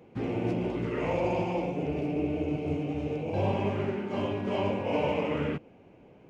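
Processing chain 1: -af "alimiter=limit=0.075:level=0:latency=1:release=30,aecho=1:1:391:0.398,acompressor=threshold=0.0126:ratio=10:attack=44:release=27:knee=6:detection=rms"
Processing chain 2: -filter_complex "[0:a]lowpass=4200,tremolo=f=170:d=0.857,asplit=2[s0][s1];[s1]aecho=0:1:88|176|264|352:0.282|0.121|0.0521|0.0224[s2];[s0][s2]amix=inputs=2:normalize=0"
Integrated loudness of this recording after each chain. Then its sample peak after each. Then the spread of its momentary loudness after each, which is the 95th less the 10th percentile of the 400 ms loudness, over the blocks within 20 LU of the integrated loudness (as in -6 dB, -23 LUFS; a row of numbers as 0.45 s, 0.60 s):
-37.5 LUFS, -34.0 LUFS; -25.0 dBFS, -16.0 dBFS; 1 LU, 4 LU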